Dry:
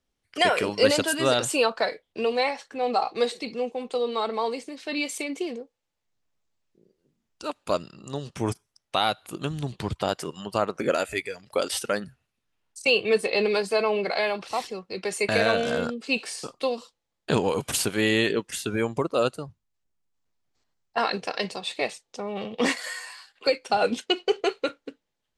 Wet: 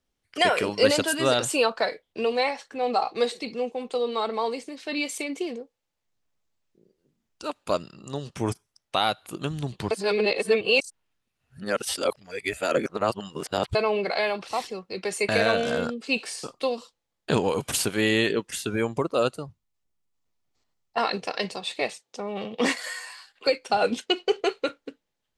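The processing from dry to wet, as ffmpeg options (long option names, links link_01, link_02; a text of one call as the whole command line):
ffmpeg -i in.wav -filter_complex "[0:a]asettb=1/sr,asplit=3[link_01][link_02][link_03];[link_01]atrim=end=19.324[link_04];[link_02]atrim=start=19.32:end=21.35,asetpts=PTS-STARTPTS,afade=type=in:duration=0.004:curve=qsin,afade=type=out:start_time=2.026:duration=0.004:curve=qsin,bandreject=frequency=1600:width=12[link_05];[link_03]atrim=start=21.346[link_06];[link_04][link_05]acrossfade=duration=0.004:curve1=hsin:curve2=qsin[link_07];[link_07][link_06]acrossfade=duration=0.004:curve1=qsin:curve2=hsin,asettb=1/sr,asplit=3[link_08][link_09][link_10];[link_08]atrim=end=21.934[link_11];[link_09]atrim=start=21.93:end=23.12,asetpts=PTS-STARTPTS,afade=type=in:duration=0.004:curve=qsin,afade=type=out:start_time=1.186:duration=0.004:curve=qsin,highpass=100[link_12];[link_10]atrim=start=23.116[link_13];[link_11][link_12]acrossfade=duration=0.004:curve1=hsin:curve2=qsin[link_14];[link_14][link_13]acrossfade=duration=0.004:curve1=qsin:curve2=hsin,asplit=3[link_15][link_16][link_17];[link_15]atrim=end=9.912[link_18];[link_16]atrim=start=9.908:end=13.752,asetpts=PTS-STARTPTS,areverse[link_19];[link_17]atrim=start=13.748[link_20];[link_18][link_19]acrossfade=duration=0.004:curve1=hsin:curve2=hsin[link_21];[link_21][link_20]acrossfade=duration=0.004:curve1=hsin:curve2=hsin" out.wav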